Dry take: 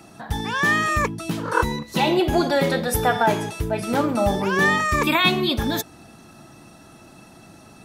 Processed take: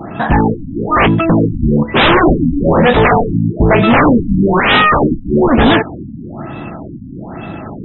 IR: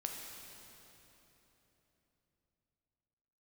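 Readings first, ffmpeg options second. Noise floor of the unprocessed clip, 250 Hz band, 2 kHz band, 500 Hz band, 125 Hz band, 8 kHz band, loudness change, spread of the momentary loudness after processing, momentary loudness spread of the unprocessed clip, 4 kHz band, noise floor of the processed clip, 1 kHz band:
-47 dBFS, +13.0 dB, +7.0 dB, +10.0 dB, +13.0 dB, under -40 dB, +10.0 dB, 19 LU, 8 LU, +6.5 dB, -28 dBFS, +9.0 dB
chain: -af "aeval=exprs='0.596*sin(PI/2*7.08*val(0)/0.596)':c=same,adynamicsmooth=sensitivity=2.5:basefreq=2800,aresample=16000,aresample=44100,afftfilt=real='re*lt(b*sr/1024,290*pow(4000/290,0.5+0.5*sin(2*PI*1.1*pts/sr)))':imag='im*lt(b*sr/1024,290*pow(4000/290,0.5+0.5*sin(2*PI*1.1*pts/sr)))':win_size=1024:overlap=0.75"

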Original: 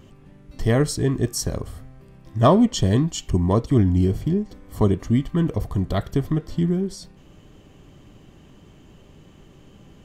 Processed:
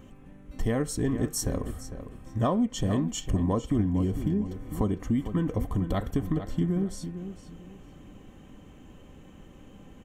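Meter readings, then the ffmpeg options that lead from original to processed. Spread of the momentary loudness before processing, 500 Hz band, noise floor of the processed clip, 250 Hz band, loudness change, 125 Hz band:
11 LU, -8.5 dB, -51 dBFS, -5.5 dB, -7.5 dB, -8.0 dB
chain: -filter_complex "[0:a]equalizer=f=4400:t=o:w=0.82:g=-7.5,bandreject=f=4900:w=11,aecho=1:1:3.9:0.37,acompressor=threshold=0.0794:ratio=4,asplit=2[s0][s1];[s1]adelay=453,lowpass=f=4300:p=1,volume=0.299,asplit=2[s2][s3];[s3]adelay=453,lowpass=f=4300:p=1,volume=0.27,asplit=2[s4][s5];[s5]adelay=453,lowpass=f=4300:p=1,volume=0.27[s6];[s0][s2][s4][s6]amix=inputs=4:normalize=0,volume=0.841"

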